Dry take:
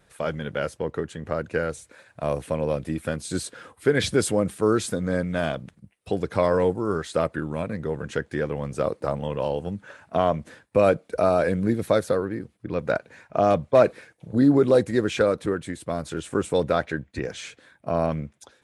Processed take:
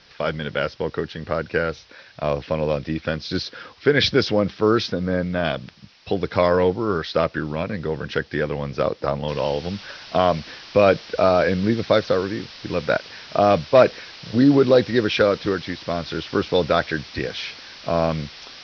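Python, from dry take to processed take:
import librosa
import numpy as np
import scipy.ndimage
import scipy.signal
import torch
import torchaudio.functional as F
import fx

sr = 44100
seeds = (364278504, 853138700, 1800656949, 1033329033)

y = fx.lowpass(x, sr, hz=1400.0, slope=6, at=(4.92, 5.45))
y = fx.noise_floor_step(y, sr, seeds[0], at_s=9.28, before_db=-56, after_db=-43, tilt_db=0.0)
y = scipy.signal.sosfilt(scipy.signal.butter(16, 5500.0, 'lowpass', fs=sr, output='sos'), y)
y = fx.high_shelf(y, sr, hz=2000.0, db=8.5)
y = y * 10.0 ** (2.5 / 20.0)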